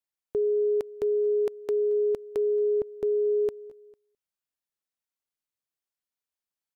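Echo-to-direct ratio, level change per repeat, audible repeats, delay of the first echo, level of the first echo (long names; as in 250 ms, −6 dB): −22.0 dB, −4.5 dB, 2, 225 ms, −23.5 dB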